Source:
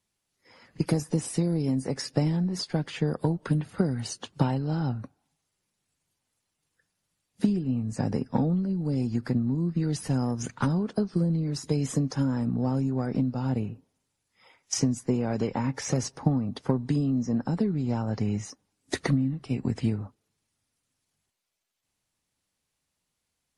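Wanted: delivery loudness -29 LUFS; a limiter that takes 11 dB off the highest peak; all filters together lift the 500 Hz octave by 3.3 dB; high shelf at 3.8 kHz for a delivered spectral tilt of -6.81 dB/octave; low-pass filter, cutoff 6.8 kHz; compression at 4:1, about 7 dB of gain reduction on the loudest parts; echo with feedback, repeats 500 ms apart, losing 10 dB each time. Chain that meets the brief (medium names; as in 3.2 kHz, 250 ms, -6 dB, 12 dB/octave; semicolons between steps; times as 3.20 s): low-pass 6.8 kHz; peaking EQ 500 Hz +4 dB; treble shelf 3.8 kHz +3.5 dB; compression 4:1, threshold -27 dBFS; peak limiter -24 dBFS; feedback delay 500 ms, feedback 32%, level -10 dB; trim +4.5 dB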